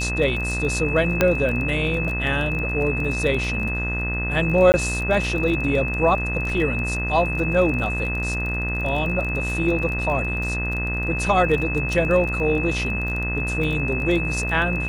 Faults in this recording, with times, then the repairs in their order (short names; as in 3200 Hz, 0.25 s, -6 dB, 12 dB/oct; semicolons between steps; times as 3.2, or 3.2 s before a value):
buzz 60 Hz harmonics 35 -27 dBFS
crackle 25/s -27 dBFS
tone 2600 Hz -26 dBFS
1.21 pop -3 dBFS
4.72–4.74 gap 19 ms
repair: de-click; de-hum 60 Hz, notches 35; notch 2600 Hz, Q 30; interpolate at 4.72, 19 ms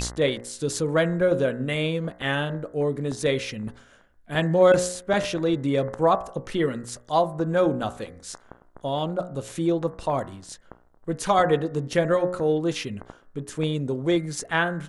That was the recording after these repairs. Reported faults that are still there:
none